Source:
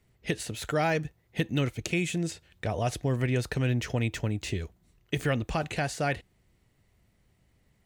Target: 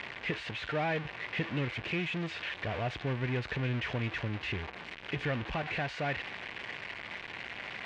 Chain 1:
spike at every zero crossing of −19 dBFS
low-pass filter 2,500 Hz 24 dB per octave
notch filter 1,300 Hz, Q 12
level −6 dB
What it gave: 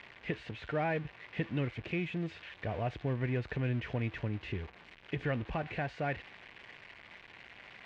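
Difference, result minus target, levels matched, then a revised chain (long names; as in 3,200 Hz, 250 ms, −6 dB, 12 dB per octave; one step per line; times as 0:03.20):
spike at every zero crossing: distortion −10 dB
spike at every zero crossing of −8 dBFS
low-pass filter 2,500 Hz 24 dB per octave
notch filter 1,300 Hz, Q 12
level −6 dB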